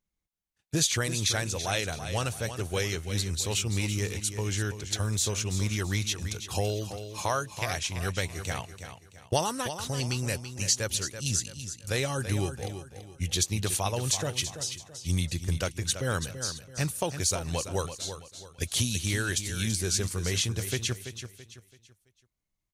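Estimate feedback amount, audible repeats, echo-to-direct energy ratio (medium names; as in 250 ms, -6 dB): 35%, 3, -9.5 dB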